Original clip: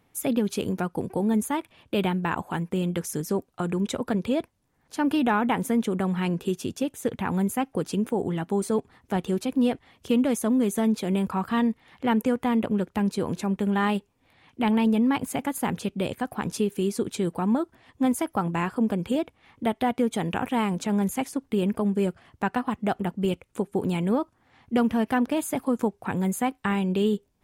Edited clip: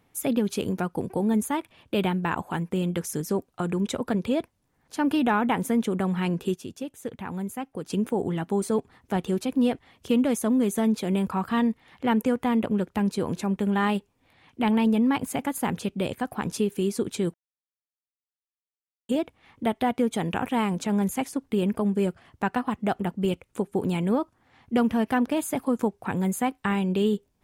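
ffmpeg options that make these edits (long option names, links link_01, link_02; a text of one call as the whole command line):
ffmpeg -i in.wav -filter_complex "[0:a]asplit=5[link_01][link_02][link_03][link_04][link_05];[link_01]atrim=end=6.542[link_06];[link_02]atrim=start=6.538:end=7.902,asetpts=PTS-STARTPTS,volume=-7dB[link_07];[link_03]atrim=start=7.898:end=17.34,asetpts=PTS-STARTPTS,afade=type=out:start_time=9.438:duration=0.004:curve=hsin[link_08];[link_04]atrim=start=17.34:end=19.09,asetpts=PTS-STARTPTS,volume=0[link_09];[link_05]atrim=start=19.09,asetpts=PTS-STARTPTS,afade=type=in:duration=0.004:curve=hsin[link_10];[link_06][link_07]acrossfade=duration=0.004:curve1=hsin:curve2=hsin[link_11];[link_08][link_09][link_10]concat=n=3:v=0:a=1[link_12];[link_11][link_12]acrossfade=duration=0.004:curve1=hsin:curve2=hsin" out.wav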